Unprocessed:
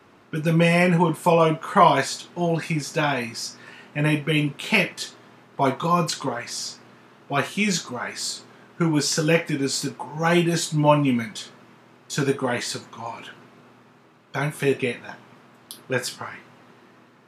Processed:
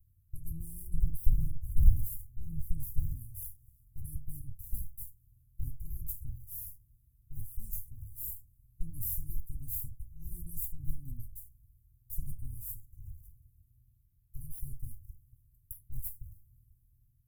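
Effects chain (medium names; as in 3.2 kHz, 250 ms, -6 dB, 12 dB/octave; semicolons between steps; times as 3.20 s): comb filter that takes the minimum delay 2.7 ms; inverse Chebyshev band-stop 510–3400 Hz, stop band 80 dB; 0.94–3.17 s: bass shelf 450 Hz +7.5 dB; trim +4 dB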